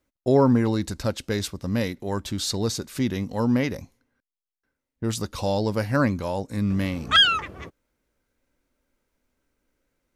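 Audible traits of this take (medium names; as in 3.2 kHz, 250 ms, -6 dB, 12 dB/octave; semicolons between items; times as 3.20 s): noise floor -88 dBFS; spectral tilt -4.0 dB/octave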